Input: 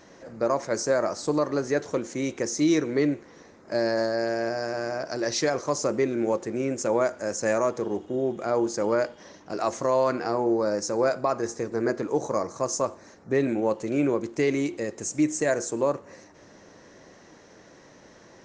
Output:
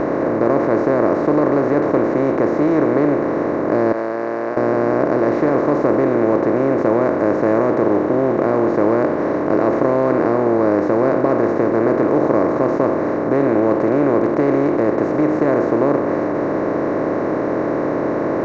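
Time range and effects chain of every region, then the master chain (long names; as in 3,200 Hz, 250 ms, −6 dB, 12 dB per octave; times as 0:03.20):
0:03.92–0:04.57: band-pass filter 670–2,500 Hz + first difference
whole clip: compressor on every frequency bin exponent 0.2; low-pass filter 1,700 Hz 12 dB per octave; spectral tilt −2 dB per octave; level −2 dB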